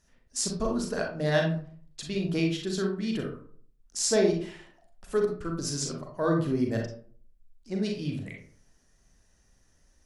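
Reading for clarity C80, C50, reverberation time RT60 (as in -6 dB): 10.0 dB, 5.0 dB, 0.50 s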